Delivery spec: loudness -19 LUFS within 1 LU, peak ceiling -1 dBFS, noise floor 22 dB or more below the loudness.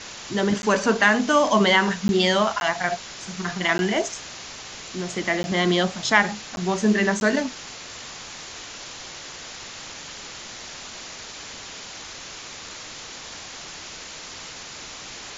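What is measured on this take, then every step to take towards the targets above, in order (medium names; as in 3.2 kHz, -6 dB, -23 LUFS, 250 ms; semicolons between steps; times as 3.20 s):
dropouts 7; longest dropout 11 ms; noise floor -39 dBFS; noise floor target -44 dBFS; loudness -22.0 LUFS; peak level -1.5 dBFS; loudness target -19.0 LUFS
-> interpolate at 0.62/2.08/2.60/3.78/5.43/6.56/7.20 s, 11 ms; noise print and reduce 6 dB; trim +3 dB; peak limiter -1 dBFS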